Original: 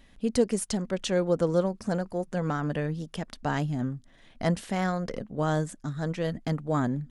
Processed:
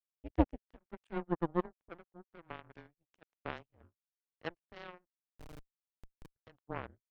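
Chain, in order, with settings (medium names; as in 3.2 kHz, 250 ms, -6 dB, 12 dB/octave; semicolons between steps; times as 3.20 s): mistuned SSB -170 Hz 240–3000 Hz; power-law waveshaper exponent 3; 5.07–6.36 s: Schmitt trigger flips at -40.5 dBFS; trim +2.5 dB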